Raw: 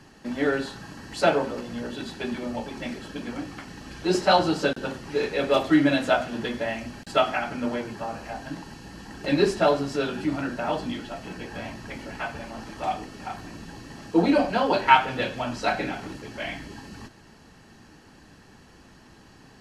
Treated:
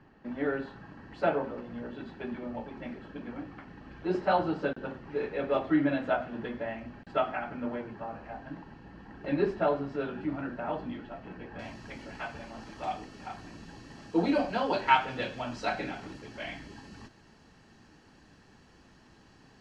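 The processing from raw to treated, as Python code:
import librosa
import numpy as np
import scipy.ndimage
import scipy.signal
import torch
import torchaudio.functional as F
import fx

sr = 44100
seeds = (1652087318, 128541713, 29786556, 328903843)

y = fx.lowpass(x, sr, hz=fx.steps((0.0, 2000.0), (11.59, 7300.0)), slope=12)
y = y * librosa.db_to_amplitude(-6.5)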